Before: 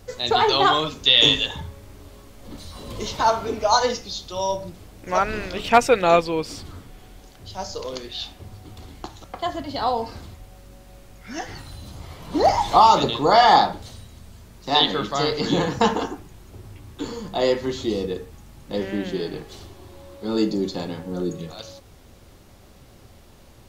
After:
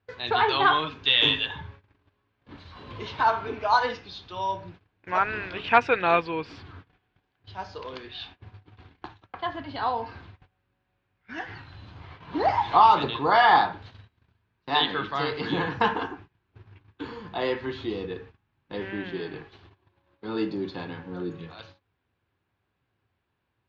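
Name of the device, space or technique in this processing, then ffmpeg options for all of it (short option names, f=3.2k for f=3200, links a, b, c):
guitar cabinet: -af "agate=range=-21dB:threshold=-39dB:ratio=16:detection=peak,highpass=85,equalizer=f=100:t=q:w=4:g=5,equalizer=f=210:t=q:w=4:g=-5,equalizer=f=570:t=q:w=4:g=-6,equalizer=f=1k:t=q:w=4:g=5,equalizer=f=1.6k:t=q:w=4:g=9,equalizer=f=2.5k:t=q:w=4:g=5,lowpass=f=3.8k:w=0.5412,lowpass=f=3.8k:w=1.3066,volume=-5.5dB"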